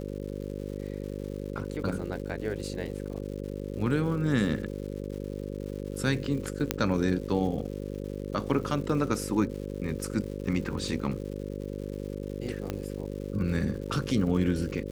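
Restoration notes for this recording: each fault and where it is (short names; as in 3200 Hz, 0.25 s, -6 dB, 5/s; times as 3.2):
buzz 50 Hz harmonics 11 -36 dBFS
crackle 260/s -40 dBFS
6.71 pop -7 dBFS
12.7 pop -17 dBFS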